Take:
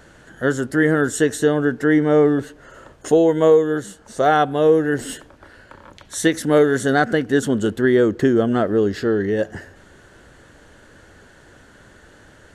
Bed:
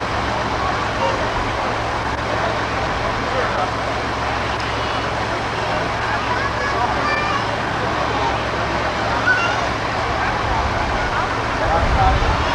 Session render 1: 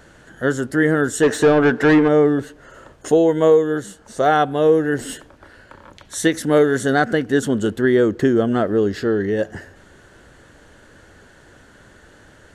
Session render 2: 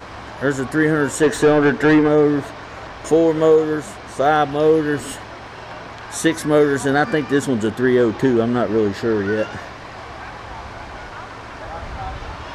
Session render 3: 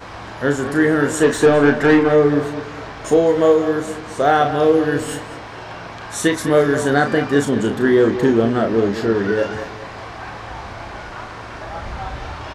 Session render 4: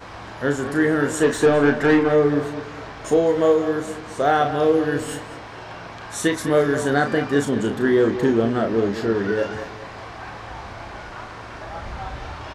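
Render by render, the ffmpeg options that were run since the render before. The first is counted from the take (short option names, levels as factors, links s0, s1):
-filter_complex "[0:a]asplit=3[s0][s1][s2];[s0]afade=t=out:st=1.22:d=0.02[s3];[s1]asplit=2[s4][s5];[s5]highpass=f=720:p=1,volume=11.2,asoftclip=type=tanh:threshold=0.596[s6];[s4][s6]amix=inputs=2:normalize=0,lowpass=f=1500:p=1,volume=0.501,afade=t=in:st=1.22:d=0.02,afade=t=out:st=2.07:d=0.02[s7];[s2]afade=t=in:st=2.07:d=0.02[s8];[s3][s7][s8]amix=inputs=3:normalize=0"
-filter_complex "[1:a]volume=0.2[s0];[0:a][s0]amix=inputs=2:normalize=0"
-filter_complex "[0:a]asplit=2[s0][s1];[s1]adelay=35,volume=0.473[s2];[s0][s2]amix=inputs=2:normalize=0,asplit=2[s3][s4];[s4]adelay=207,lowpass=f=3300:p=1,volume=0.282,asplit=2[s5][s6];[s6]adelay=207,lowpass=f=3300:p=1,volume=0.36,asplit=2[s7][s8];[s8]adelay=207,lowpass=f=3300:p=1,volume=0.36,asplit=2[s9][s10];[s10]adelay=207,lowpass=f=3300:p=1,volume=0.36[s11];[s3][s5][s7][s9][s11]amix=inputs=5:normalize=0"
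-af "volume=0.668"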